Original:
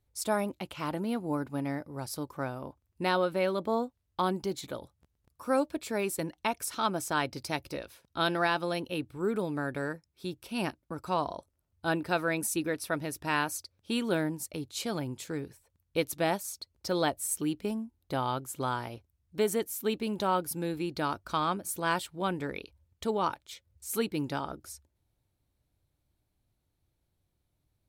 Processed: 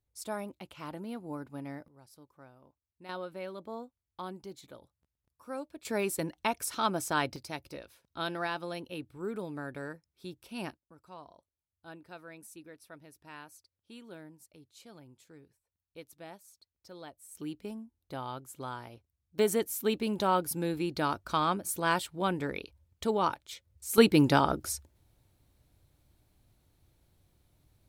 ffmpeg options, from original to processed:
ffmpeg -i in.wav -af "asetnsamples=nb_out_samples=441:pad=0,asendcmd='1.88 volume volume -20dB;3.09 volume volume -12dB;5.85 volume volume 0dB;7.36 volume volume -6.5dB;10.77 volume volume -19dB;17.35 volume volume -8dB;19.39 volume volume 1dB;23.98 volume volume 10dB',volume=-8dB" out.wav

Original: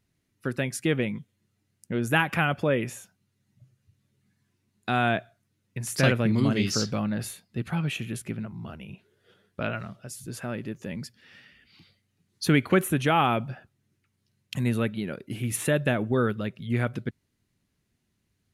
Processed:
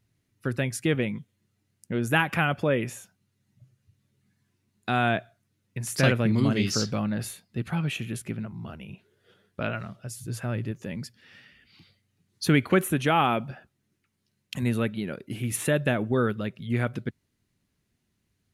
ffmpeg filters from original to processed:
ffmpeg -i in.wav -af "asetnsamples=nb_out_samples=441:pad=0,asendcmd='0.95 equalizer g 1;10.03 equalizer g 11;10.71 equalizer g 3;12.63 equalizer g -5;13.51 equalizer g -11.5;14.62 equalizer g -0.5',equalizer=frequency=110:width_type=o:width=0.4:gain=7.5" out.wav

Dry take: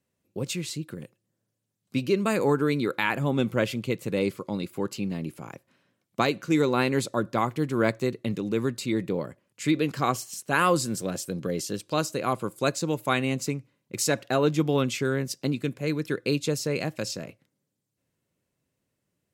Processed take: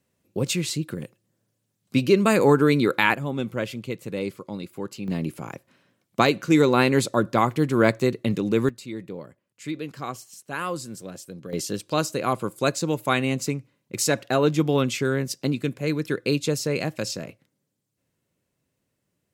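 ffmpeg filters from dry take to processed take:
ffmpeg -i in.wav -af "asetnsamples=nb_out_samples=441:pad=0,asendcmd='3.14 volume volume -3dB;5.08 volume volume 5dB;8.69 volume volume -7.5dB;11.53 volume volume 2.5dB',volume=6dB" out.wav

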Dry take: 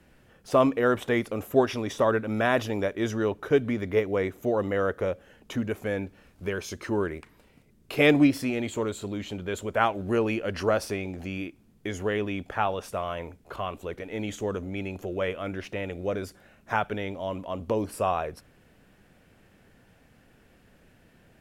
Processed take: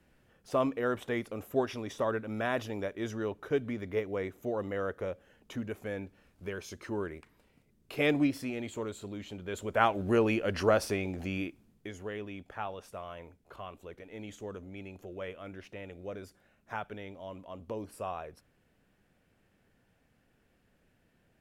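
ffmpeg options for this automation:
ffmpeg -i in.wav -af "volume=-1dB,afade=type=in:start_time=9.42:duration=0.53:silence=0.446684,afade=type=out:start_time=11.44:duration=0.49:silence=0.298538" out.wav

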